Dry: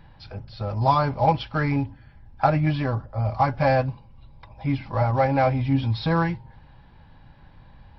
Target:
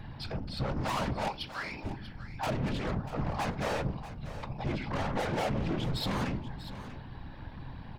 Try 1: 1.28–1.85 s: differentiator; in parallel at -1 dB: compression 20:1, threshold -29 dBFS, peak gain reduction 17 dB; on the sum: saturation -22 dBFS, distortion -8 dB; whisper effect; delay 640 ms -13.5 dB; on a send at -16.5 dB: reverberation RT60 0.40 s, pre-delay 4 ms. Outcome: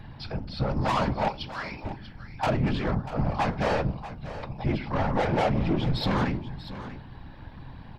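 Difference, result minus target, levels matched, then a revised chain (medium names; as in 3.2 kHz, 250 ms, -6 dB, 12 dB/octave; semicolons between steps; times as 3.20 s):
saturation: distortion -5 dB
1.28–1.85 s: differentiator; in parallel at -1 dB: compression 20:1, threshold -29 dBFS, peak gain reduction 17 dB; on the sum: saturation -30.5 dBFS, distortion -4 dB; whisper effect; delay 640 ms -13.5 dB; on a send at -16.5 dB: reverberation RT60 0.40 s, pre-delay 4 ms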